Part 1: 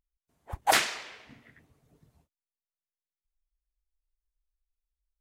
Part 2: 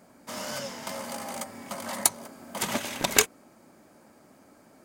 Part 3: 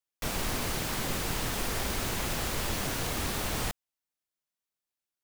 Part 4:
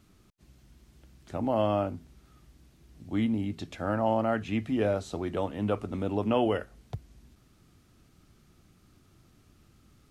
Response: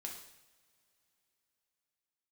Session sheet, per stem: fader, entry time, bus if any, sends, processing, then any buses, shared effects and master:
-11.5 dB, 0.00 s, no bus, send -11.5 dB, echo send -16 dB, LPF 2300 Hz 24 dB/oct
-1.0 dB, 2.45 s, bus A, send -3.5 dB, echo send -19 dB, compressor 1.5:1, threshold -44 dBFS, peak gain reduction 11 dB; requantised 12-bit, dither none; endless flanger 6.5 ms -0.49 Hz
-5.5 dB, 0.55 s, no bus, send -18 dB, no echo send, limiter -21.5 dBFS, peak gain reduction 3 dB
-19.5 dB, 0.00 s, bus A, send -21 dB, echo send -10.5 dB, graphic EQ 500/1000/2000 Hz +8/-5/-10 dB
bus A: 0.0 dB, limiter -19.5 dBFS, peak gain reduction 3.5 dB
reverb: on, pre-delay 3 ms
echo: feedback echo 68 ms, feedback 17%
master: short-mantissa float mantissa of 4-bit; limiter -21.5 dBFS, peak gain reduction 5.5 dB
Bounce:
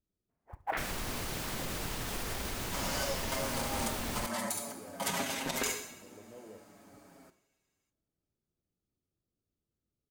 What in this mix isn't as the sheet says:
stem 2: missing compressor 1.5:1, threshold -44 dBFS, peak gain reduction 11 dB; stem 4 -19.5 dB -> -30.0 dB

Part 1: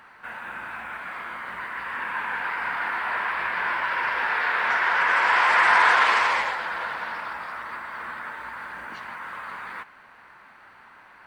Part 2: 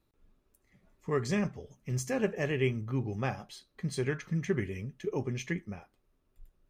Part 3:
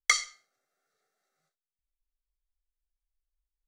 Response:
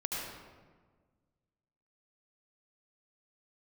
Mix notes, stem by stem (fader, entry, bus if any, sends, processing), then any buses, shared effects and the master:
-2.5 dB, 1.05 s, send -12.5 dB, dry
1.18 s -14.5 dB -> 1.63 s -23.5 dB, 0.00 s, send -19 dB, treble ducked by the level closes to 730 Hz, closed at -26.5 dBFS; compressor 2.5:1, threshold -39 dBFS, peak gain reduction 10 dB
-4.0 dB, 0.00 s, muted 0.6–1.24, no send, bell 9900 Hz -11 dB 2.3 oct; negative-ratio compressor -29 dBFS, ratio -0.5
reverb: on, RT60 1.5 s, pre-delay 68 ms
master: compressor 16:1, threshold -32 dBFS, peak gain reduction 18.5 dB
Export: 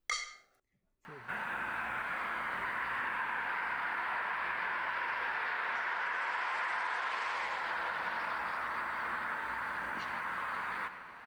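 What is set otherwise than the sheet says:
stem 2: send off; stem 3 -4.0 dB -> +6.5 dB

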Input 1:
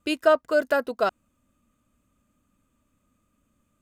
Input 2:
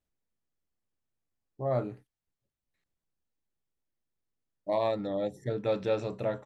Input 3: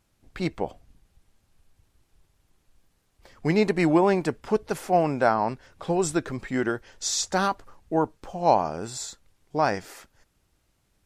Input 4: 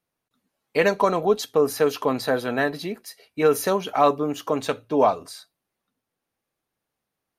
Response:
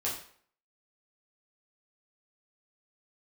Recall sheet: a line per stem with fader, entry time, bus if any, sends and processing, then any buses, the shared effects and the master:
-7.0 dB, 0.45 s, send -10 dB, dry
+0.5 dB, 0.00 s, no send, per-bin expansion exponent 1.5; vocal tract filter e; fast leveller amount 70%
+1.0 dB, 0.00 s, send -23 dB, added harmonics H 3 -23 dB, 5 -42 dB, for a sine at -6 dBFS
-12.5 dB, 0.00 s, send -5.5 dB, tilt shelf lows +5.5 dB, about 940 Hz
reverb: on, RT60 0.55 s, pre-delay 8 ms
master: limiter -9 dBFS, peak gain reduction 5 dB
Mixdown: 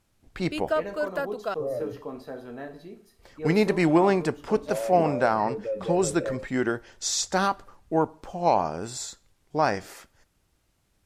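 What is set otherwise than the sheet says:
stem 1: send off; stem 4 -12.5 dB -> -21.5 dB

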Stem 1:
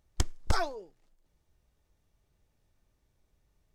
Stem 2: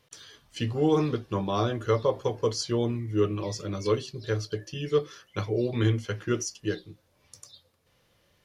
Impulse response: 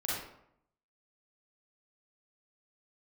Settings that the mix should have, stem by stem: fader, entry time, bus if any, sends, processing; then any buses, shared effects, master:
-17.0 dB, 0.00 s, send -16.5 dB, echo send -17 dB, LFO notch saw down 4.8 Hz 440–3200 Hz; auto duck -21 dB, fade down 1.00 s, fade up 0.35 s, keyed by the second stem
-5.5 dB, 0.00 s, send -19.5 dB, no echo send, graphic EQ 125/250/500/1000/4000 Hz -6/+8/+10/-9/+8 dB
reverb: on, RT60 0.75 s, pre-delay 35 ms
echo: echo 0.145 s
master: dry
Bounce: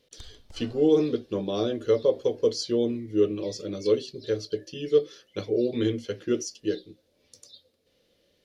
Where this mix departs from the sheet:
stem 1: send -16.5 dB -> -10.5 dB; stem 2: send off

